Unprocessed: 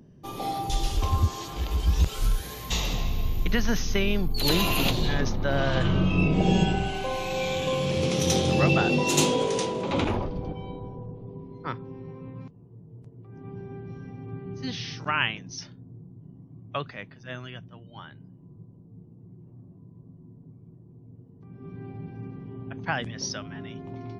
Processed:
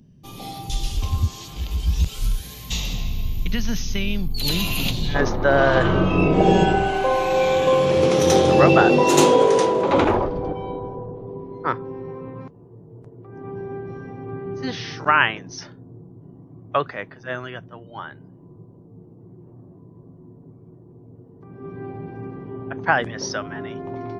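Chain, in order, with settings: high-order bell 760 Hz -8 dB 2.9 oct, from 5.14 s +9 dB; trim +2 dB

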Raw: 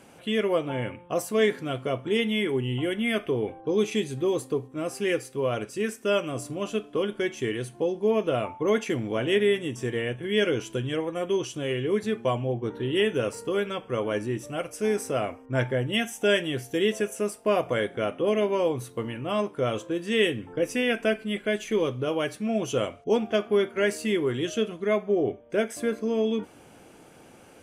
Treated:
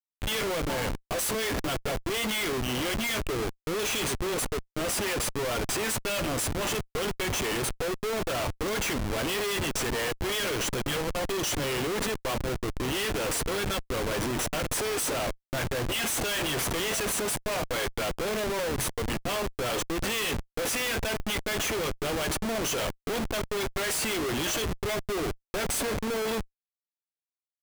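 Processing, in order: tilt EQ +4.5 dB/octave; Schmitt trigger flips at -34 dBFS

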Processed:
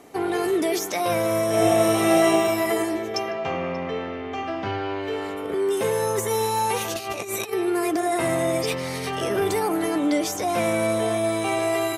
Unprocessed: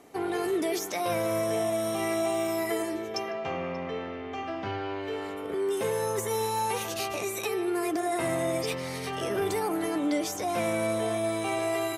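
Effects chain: 1.49–2.26 s: reverb throw, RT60 2.9 s, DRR -6 dB; 6.95–7.53 s: compressor with a negative ratio -35 dBFS, ratio -0.5; trim +5.5 dB

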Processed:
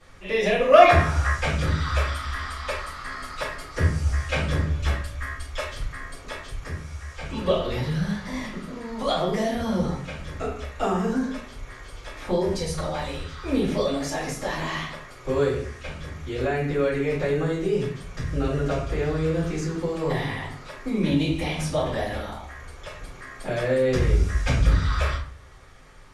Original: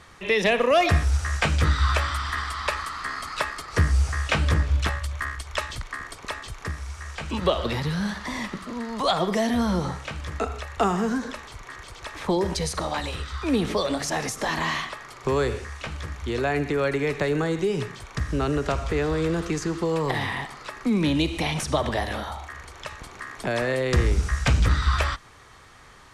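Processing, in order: 0.72–1.30 s: peaking EQ 1.1 kHz +13.5 dB 2.1 oct; simulated room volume 41 m³, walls mixed, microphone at 2.4 m; trim -14.5 dB

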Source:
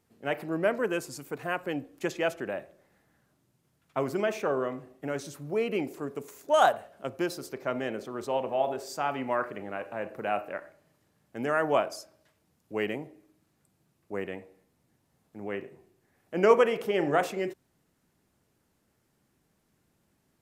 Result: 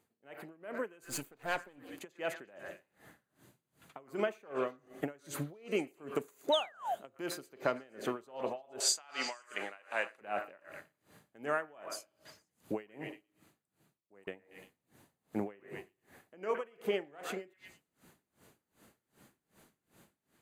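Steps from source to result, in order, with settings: 1.04–1.78 s: partial rectifier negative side -12 dB; compression 20:1, threshold -39 dBFS, peak gain reduction 25.5 dB; 8.80–10.21 s: frequency weighting ITU-R 468; level rider gain up to 13 dB; bass shelf 120 Hz -10.5 dB; band-stop 5.4 kHz, Q 5.5; 12.96–14.27 s: fade out; repeats whose band climbs or falls 116 ms, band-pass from 1.5 kHz, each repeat 0.7 oct, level -7 dB; 6.52–6.95 s: painted sound fall 640–4000 Hz -32 dBFS; logarithmic tremolo 2.6 Hz, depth 28 dB

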